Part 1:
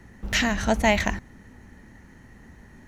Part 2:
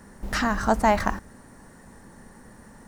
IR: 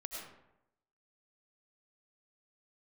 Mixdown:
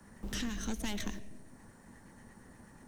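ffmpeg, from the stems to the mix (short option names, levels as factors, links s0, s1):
-filter_complex "[0:a]highpass=f=90:w=0.5412,highpass=f=90:w=1.3066,acrossover=split=1100[s0][s1];[s0]aeval=exprs='val(0)*(1-0.7/2+0.7/2*cos(2*PI*8.4*n/s))':c=same[s2];[s1]aeval=exprs='val(0)*(1-0.7/2-0.7/2*cos(2*PI*8.4*n/s))':c=same[s3];[s2][s3]amix=inputs=2:normalize=0,aeval=exprs='(tanh(10*val(0)+0.65)-tanh(0.65))/10':c=same,volume=0.794,asplit=2[s4][s5];[s5]volume=0.251[s6];[1:a]equalizer=f=490:w=1.5:g=-2,bandreject=f=1900:w=12,volume=0.376,asplit=2[s7][s8];[s8]apad=whole_len=126917[s9];[s4][s9]sidechaingate=range=0.0224:threshold=0.00158:ratio=16:detection=peak[s10];[2:a]atrim=start_sample=2205[s11];[s6][s11]afir=irnorm=-1:irlink=0[s12];[s10][s7][s12]amix=inputs=3:normalize=0,acrossover=split=110|270|560|2700[s13][s14][s15][s16][s17];[s13]acompressor=threshold=0.0141:ratio=4[s18];[s14]acompressor=threshold=0.00501:ratio=4[s19];[s15]acompressor=threshold=0.00794:ratio=4[s20];[s16]acompressor=threshold=0.00126:ratio=4[s21];[s17]acompressor=threshold=0.0112:ratio=4[s22];[s18][s19][s20][s21][s22]amix=inputs=5:normalize=0"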